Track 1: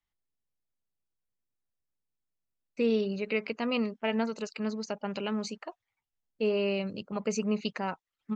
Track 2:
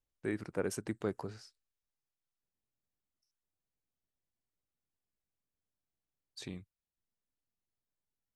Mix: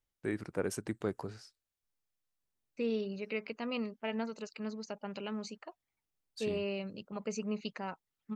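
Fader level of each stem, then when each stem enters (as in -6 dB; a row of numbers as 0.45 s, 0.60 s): -7.0 dB, +0.5 dB; 0.00 s, 0.00 s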